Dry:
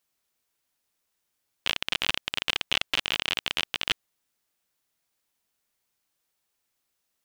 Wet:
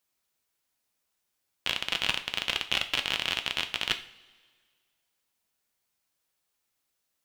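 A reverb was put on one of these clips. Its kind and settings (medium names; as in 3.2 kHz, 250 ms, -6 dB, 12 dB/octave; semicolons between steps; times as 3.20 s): two-slope reverb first 0.44 s, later 1.8 s, from -18 dB, DRR 6.5 dB; trim -2 dB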